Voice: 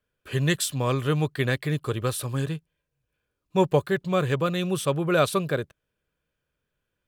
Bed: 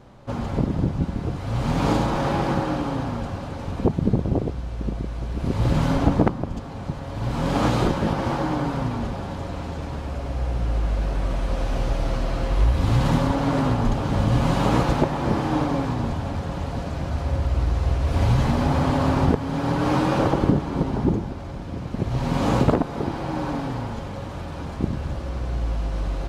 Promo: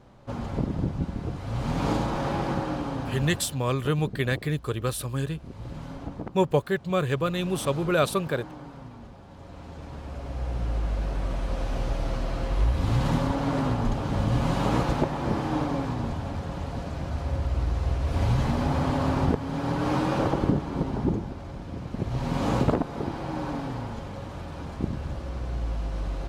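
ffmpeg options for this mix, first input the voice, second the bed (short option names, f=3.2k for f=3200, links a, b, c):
-filter_complex "[0:a]adelay=2800,volume=-1.5dB[a];[1:a]volume=8dB,afade=t=out:st=3.3:d=0.34:silence=0.237137,afade=t=in:st=9.26:d=1.34:silence=0.223872[b];[a][b]amix=inputs=2:normalize=0"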